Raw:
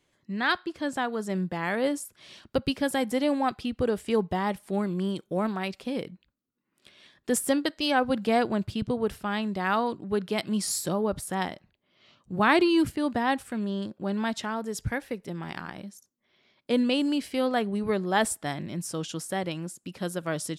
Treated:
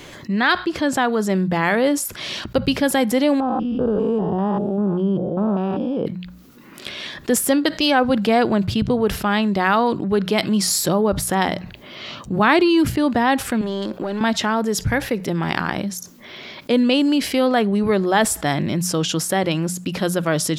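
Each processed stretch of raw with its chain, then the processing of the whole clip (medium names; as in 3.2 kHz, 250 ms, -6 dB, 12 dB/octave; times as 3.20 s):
3.40–6.06 s: spectrogram pixelated in time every 200 ms + boxcar filter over 21 samples
13.61–14.21 s: high-pass 300 Hz + compression 4:1, threshold -41 dBFS + waveshaping leveller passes 1
whole clip: peaking EQ 8.9 kHz -7 dB 0.45 oct; hum notches 60/120/180 Hz; level flattener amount 50%; trim +5.5 dB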